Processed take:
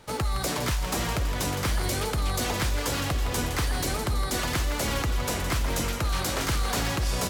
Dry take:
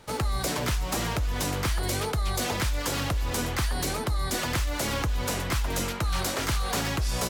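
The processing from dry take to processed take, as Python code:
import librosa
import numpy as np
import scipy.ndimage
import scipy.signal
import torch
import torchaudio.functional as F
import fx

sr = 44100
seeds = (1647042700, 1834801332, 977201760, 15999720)

y = fx.echo_split(x, sr, split_hz=780.0, low_ms=755, high_ms=164, feedback_pct=52, wet_db=-9)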